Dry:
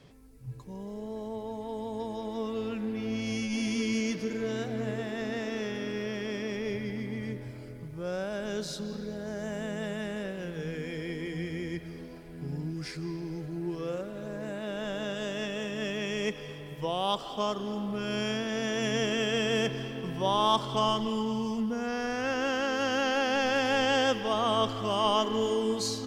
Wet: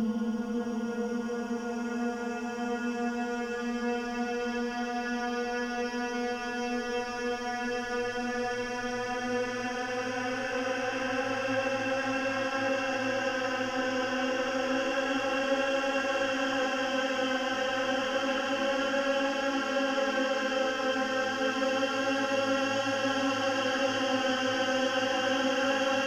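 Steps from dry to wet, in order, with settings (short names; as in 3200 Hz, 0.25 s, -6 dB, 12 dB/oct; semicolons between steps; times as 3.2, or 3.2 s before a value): Paulstretch 20×, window 0.25 s, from 21.68; notches 50/100/150/200/250 Hz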